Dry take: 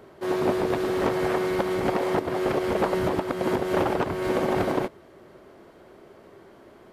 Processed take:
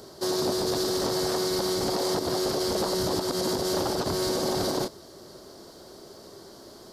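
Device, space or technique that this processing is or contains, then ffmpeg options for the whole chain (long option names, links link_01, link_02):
over-bright horn tweeter: -af "highshelf=frequency=3400:width_type=q:width=3:gain=12,alimiter=limit=-21dB:level=0:latency=1:release=40,volume=2.5dB"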